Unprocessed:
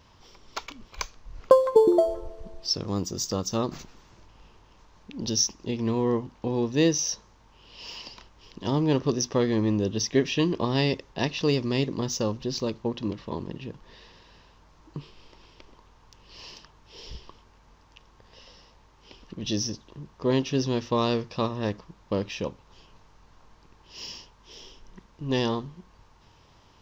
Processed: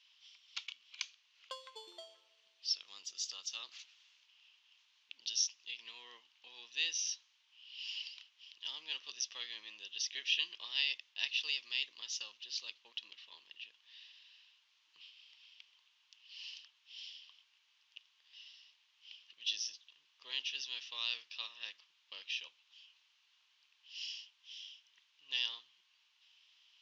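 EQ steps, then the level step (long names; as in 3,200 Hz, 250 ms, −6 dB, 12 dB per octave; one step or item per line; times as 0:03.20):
four-pole ladder band-pass 3,400 Hz, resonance 55%
+5.0 dB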